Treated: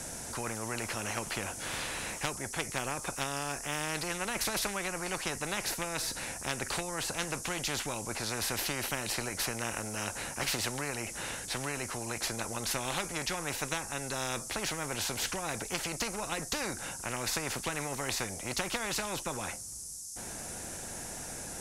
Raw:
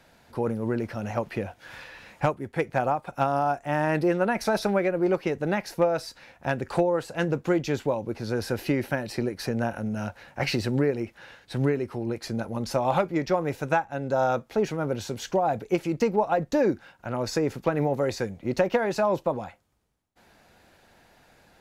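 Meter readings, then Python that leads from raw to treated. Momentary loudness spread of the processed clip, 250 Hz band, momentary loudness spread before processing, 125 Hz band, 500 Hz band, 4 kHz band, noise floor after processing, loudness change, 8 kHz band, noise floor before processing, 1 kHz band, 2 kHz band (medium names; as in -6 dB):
5 LU, -13.0 dB, 8 LU, -10.5 dB, -14.0 dB, +4.5 dB, -43 dBFS, -7.0 dB, +11.5 dB, -60 dBFS, -9.0 dB, -1.5 dB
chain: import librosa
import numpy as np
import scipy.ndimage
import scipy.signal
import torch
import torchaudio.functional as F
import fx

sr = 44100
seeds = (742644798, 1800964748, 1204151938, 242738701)

y = fx.low_shelf(x, sr, hz=310.0, db=9.0)
y = fx.dmg_noise_band(y, sr, seeds[0], low_hz=5400.0, high_hz=11000.0, level_db=-54.0)
y = fx.spectral_comp(y, sr, ratio=4.0)
y = y * librosa.db_to_amplitude(-8.5)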